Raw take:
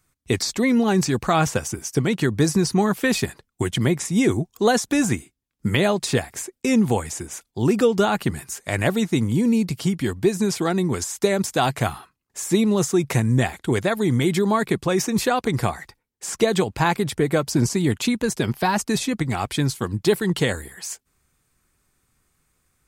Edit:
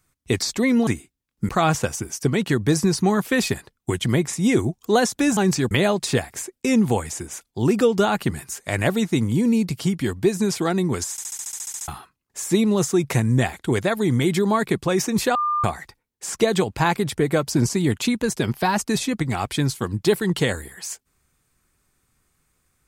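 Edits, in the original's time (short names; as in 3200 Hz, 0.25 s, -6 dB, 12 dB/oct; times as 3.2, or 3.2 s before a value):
0.87–1.21 swap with 5.09–5.71
11.11 stutter in place 0.07 s, 11 plays
15.35–15.64 bleep 1200 Hz -19 dBFS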